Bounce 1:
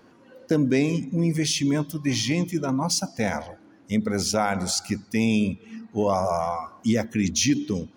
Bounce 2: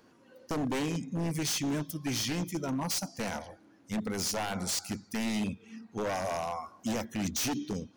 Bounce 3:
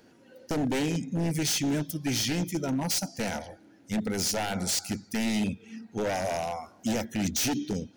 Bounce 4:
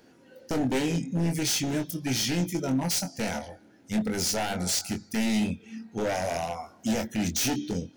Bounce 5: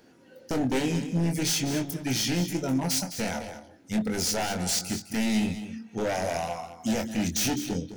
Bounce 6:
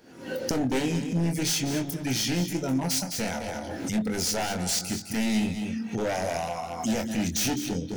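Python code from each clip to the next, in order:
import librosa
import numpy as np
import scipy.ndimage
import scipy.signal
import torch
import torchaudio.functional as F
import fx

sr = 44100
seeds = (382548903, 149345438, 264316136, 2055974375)

y1 = fx.high_shelf(x, sr, hz=4400.0, db=7.5)
y1 = 10.0 ** (-18.5 / 20.0) * (np.abs((y1 / 10.0 ** (-18.5 / 20.0) + 3.0) % 4.0 - 2.0) - 1.0)
y1 = y1 * 10.0 ** (-7.5 / 20.0)
y2 = fx.peak_eq(y1, sr, hz=1100.0, db=-13.5, octaves=0.26)
y2 = y2 * 10.0 ** (4.0 / 20.0)
y3 = fx.doubler(y2, sr, ms=23.0, db=-6.5)
y4 = y3 + 10.0 ** (-11.5 / 20.0) * np.pad(y3, (int(207 * sr / 1000.0), 0))[:len(y3)]
y5 = fx.recorder_agc(y4, sr, target_db=-24.0, rise_db_per_s=67.0, max_gain_db=30)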